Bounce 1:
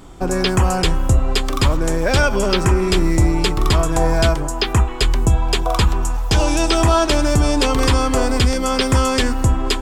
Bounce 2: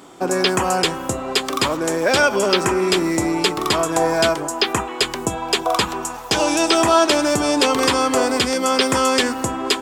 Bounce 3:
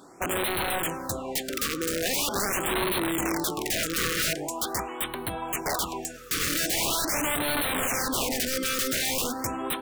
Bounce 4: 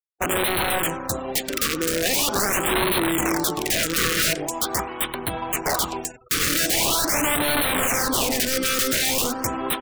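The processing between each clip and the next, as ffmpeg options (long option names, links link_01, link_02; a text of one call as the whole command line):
ffmpeg -i in.wav -af "highpass=270,volume=2dB" out.wav
ffmpeg -i in.wav -af "aeval=exprs='(mod(5.01*val(0)+1,2)-1)/5.01':channel_layout=same,afftfilt=real='re*(1-between(b*sr/1024,770*pow(6300/770,0.5+0.5*sin(2*PI*0.43*pts/sr))/1.41,770*pow(6300/770,0.5+0.5*sin(2*PI*0.43*pts/sr))*1.41))':imag='im*(1-between(b*sr/1024,770*pow(6300/770,0.5+0.5*sin(2*PI*0.43*pts/sr))/1.41,770*pow(6300/770,0.5+0.5*sin(2*PI*0.43*pts/sr))*1.41))':win_size=1024:overlap=0.75,volume=-7dB" out.wav
ffmpeg -i in.wav -filter_complex "[0:a]aeval=exprs='sgn(val(0))*max(abs(val(0))-0.00631,0)':channel_layout=same,asplit=2[link_01][link_02];[link_02]adelay=90,lowpass=frequency=2200:poles=1,volume=-18dB,asplit=2[link_03][link_04];[link_04]adelay=90,lowpass=frequency=2200:poles=1,volume=0.51,asplit=2[link_05][link_06];[link_06]adelay=90,lowpass=frequency=2200:poles=1,volume=0.51,asplit=2[link_07][link_08];[link_08]adelay=90,lowpass=frequency=2200:poles=1,volume=0.51[link_09];[link_01][link_03][link_05][link_07][link_09]amix=inputs=5:normalize=0,afftfilt=real='re*gte(hypot(re,im),0.00398)':imag='im*gte(hypot(re,im),0.00398)':win_size=1024:overlap=0.75,volume=6.5dB" out.wav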